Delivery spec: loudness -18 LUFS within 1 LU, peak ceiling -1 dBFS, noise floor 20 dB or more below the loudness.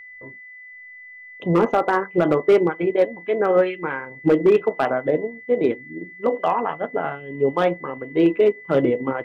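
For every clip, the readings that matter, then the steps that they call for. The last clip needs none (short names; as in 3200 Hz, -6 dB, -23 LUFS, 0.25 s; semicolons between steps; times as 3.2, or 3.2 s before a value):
clipped 0.9%; flat tops at -9.0 dBFS; steady tone 2000 Hz; tone level -39 dBFS; loudness -21.0 LUFS; peak -9.0 dBFS; loudness target -18.0 LUFS
-> clip repair -9 dBFS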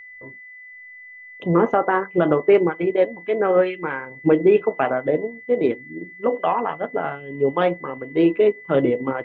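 clipped 0.0%; steady tone 2000 Hz; tone level -39 dBFS
-> notch 2000 Hz, Q 30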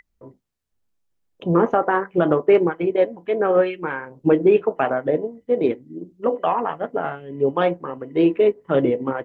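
steady tone none; loudness -20.5 LUFS; peak -4.5 dBFS; loudness target -18.0 LUFS
-> gain +2.5 dB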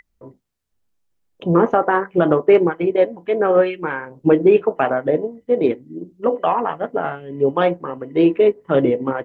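loudness -18.0 LUFS; peak -2.0 dBFS; noise floor -69 dBFS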